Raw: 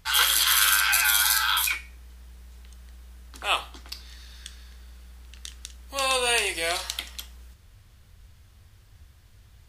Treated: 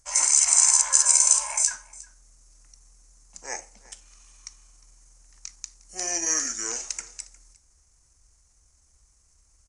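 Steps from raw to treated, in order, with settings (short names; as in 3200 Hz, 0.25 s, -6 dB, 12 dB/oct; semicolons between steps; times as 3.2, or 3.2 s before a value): resonant high shelf 7000 Hz +12.5 dB, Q 3; pitch shift -7 st; on a send: echo 0.357 s -21.5 dB; on the sum: gain -10.5 dB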